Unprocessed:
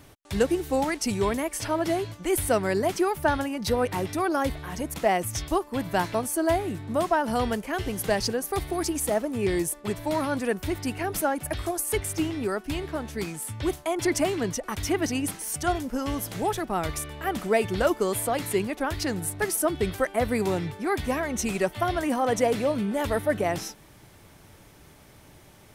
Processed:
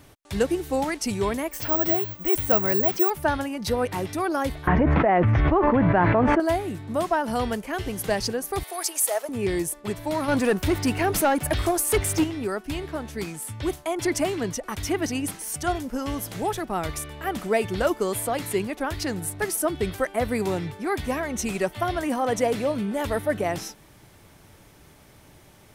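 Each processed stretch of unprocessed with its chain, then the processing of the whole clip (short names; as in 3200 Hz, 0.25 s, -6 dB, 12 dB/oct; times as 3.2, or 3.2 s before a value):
1.51–3.1 air absorption 53 m + careless resampling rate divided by 2×, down filtered, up zero stuff
4.67–6.4 block floating point 5-bit + LPF 2000 Hz 24 dB/oct + fast leveller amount 100%
8.63–9.29 HPF 510 Hz 24 dB/oct + high shelf 5900 Hz +9.5 dB
10.28–12.24 sample leveller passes 2 + bell 12000 Hz -2.5 dB 1.1 oct
whole clip: dry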